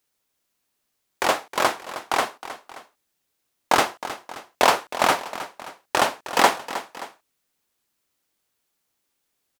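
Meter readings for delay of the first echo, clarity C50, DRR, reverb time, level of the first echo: 314 ms, no reverb audible, no reverb audible, no reverb audible, −13.5 dB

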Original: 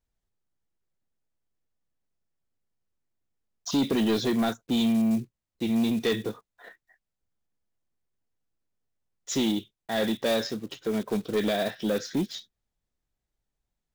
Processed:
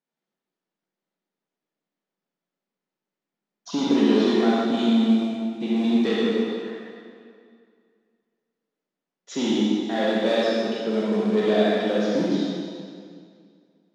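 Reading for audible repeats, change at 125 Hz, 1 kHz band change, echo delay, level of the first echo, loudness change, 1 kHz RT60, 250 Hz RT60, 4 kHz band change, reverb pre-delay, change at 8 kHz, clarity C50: no echo audible, +2.5 dB, +6.0 dB, no echo audible, no echo audible, +5.0 dB, 2.2 s, 2.2 s, +2.5 dB, 35 ms, can't be measured, −4.5 dB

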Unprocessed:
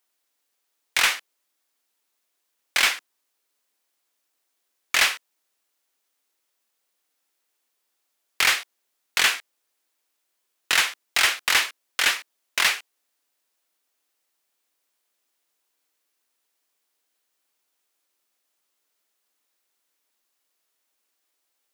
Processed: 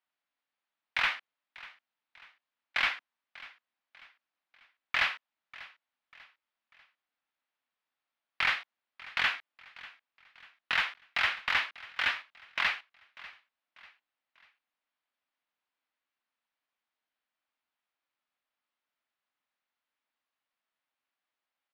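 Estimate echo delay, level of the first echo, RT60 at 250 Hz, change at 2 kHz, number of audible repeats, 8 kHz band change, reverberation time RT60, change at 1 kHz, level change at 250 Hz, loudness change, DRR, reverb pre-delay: 593 ms, −19.5 dB, no reverb audible, −7.0 dB, 3, −28.0 dB, no reverb audible, −6.0 dB, −9.5 dB, −9.0 dB, no reverb audible, no reverb audible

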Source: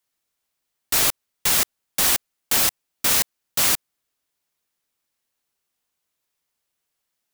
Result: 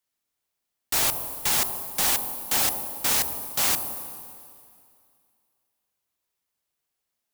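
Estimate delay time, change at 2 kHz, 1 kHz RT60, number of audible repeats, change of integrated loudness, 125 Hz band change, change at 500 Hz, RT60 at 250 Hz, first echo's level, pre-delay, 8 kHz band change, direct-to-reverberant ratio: no echo audible, −4.5 dB, 2.3 s, no echo audible, −3.5 dB, −3.0 dB, −2.0 dB, 2.3 s, no echo audible, 24 ms, −4.0 dB, 8.0 dB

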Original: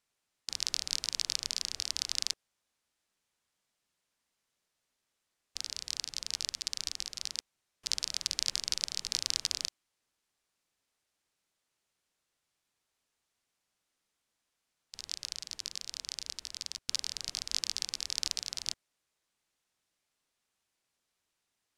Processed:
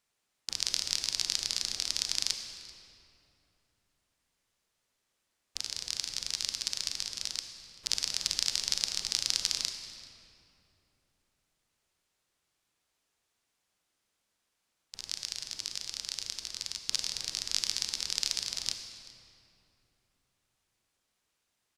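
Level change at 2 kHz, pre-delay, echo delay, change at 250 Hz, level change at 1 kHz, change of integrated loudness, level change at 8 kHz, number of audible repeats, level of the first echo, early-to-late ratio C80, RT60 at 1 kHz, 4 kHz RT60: +3.0 dB, 30 ms, 387 ms, +3.5 dB, +3.0 dB, +2.5 dB, +2.5 dB, 1, −22.0 dB, 7.0 dB, 2.8 s, 1.8 s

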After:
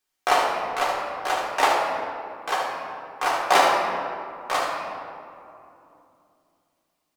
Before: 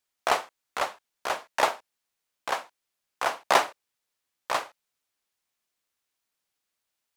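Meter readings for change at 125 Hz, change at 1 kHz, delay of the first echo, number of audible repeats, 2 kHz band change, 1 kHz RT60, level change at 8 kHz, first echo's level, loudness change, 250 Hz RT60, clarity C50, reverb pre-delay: can't be measured, +7.0 dB, 74 ms, 1, +5.5 dB, 2.7 s, +3.5 dB, −5.5 dB, +4.5 dB, 3.9 s, 0.5 dB, 3 ms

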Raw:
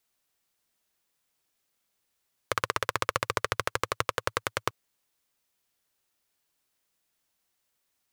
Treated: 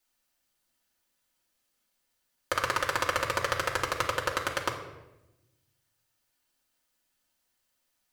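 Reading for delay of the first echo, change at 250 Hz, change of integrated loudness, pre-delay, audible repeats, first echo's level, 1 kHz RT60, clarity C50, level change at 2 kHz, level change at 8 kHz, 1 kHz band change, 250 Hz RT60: no echo audible, +2.0 dB, +1.0 dB, 3 ms, no echo audible, no echo audible, 0.85 s, 7.5 dB, +2.0 dB, +0.5 dB, +1.0 dB, 1.4 s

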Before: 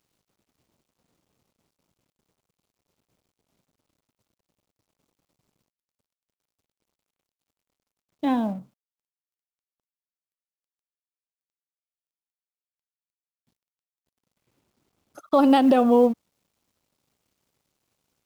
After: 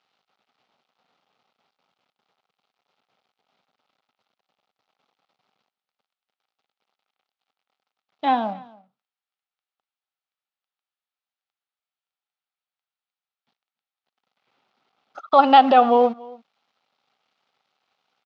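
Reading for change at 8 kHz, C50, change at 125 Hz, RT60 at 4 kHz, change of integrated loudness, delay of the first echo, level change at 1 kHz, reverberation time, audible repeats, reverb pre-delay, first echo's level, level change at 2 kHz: can't be measured, no reverb audible, can't be measured, no reverb audible, +3.0 dB, 284 ms, +10.0 dB, no reverb audible, 1, no reverb audible, −23.0 dB, +7.0 dB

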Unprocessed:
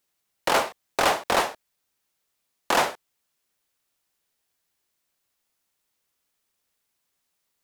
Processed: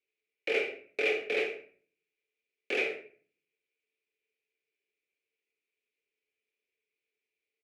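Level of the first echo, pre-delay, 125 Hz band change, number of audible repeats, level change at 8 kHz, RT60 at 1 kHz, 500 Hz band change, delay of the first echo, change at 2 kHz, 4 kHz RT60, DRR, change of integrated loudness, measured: −14.0 dB, 4 ms, below −20 dB, 1, −23.0 dB, 0.40 s, −4.5 dB, 86 ms, −4.0 dB, 0.35 s, 1.5 dB, −7.0 dB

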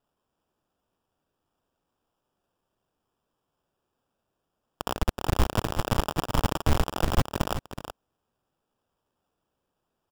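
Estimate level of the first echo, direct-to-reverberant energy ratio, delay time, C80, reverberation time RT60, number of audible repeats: −9.5 dB, no reverb audible, 373 ms, no reverb audible, no reverb audible, 1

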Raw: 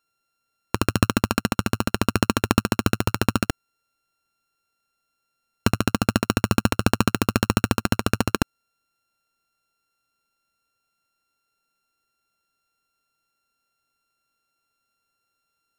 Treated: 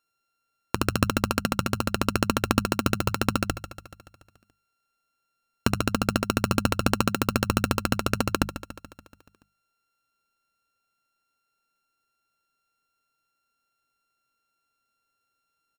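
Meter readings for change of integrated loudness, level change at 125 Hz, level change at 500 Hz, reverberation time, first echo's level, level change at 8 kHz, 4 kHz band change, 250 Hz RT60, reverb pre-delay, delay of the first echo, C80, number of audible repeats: −3.0 dB, −4.0 dB, −2.0 dB, no reverb audible, −13.0 dB, −2.5 dB, −2.5 dB, no reverb audible, no reverb audible, 143 ms, no reverb audible, 5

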